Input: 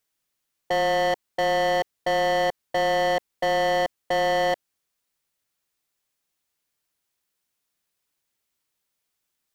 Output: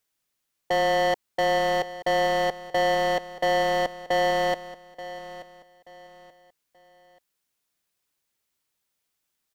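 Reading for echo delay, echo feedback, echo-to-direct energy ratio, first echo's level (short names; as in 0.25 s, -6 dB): 0.881 s, 32%, -14.5 dB, -15.0 dB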